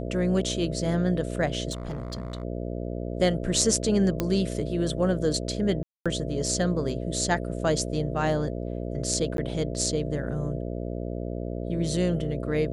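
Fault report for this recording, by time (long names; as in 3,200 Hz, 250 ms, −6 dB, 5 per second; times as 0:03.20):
mains buzz 60 Hz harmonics 11 −32 dBFS
0:01.71–0:02.43: clipping −28.5 dBFS
0:04.20: click −11 dBFS
0:05.83–0:06.06: drop-out 226 ms
0:09.37–0:09.38: drop-out 12 ms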